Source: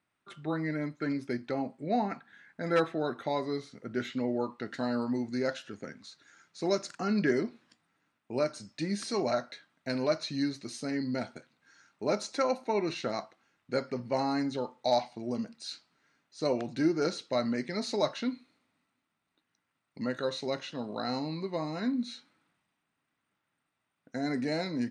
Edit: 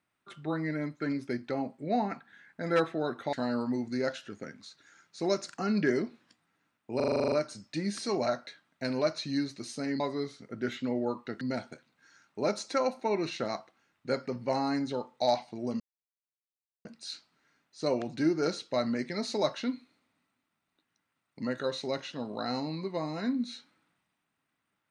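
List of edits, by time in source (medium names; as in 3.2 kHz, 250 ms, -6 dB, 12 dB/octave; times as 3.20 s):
3.33–4.74 s: move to 11.05 s
8.37 s: stutter 0.04 s, 10 plays
15.44 s: insert silence 1.05 s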